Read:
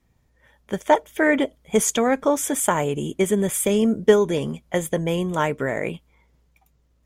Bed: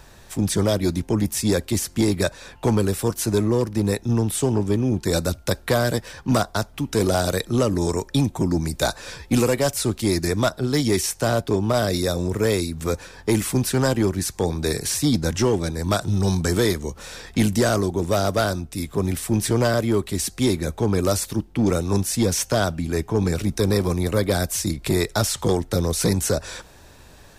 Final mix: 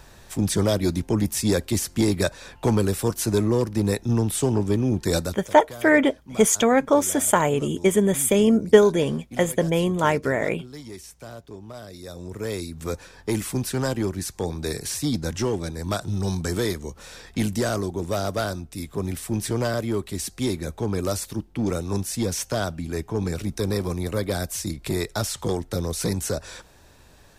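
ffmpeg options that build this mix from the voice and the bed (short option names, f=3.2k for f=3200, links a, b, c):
-filter_complex "[0:a]adelay=4650,volume=1.5dB[a];[1:a]volume=13dB,afade=t=out:st=5.15:d=0.3:silence=0.125893,afade=t=in:st=11.97:d=0.95:silence=0.199526[b];[a][b]amix=inputs=2:normalize=0"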